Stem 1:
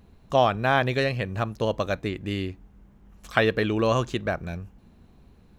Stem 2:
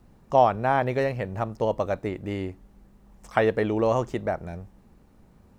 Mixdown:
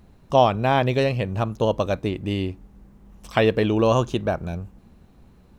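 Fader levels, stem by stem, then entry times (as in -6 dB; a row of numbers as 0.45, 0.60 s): 0.0, -1.0 dB; 0.00, 0.00 s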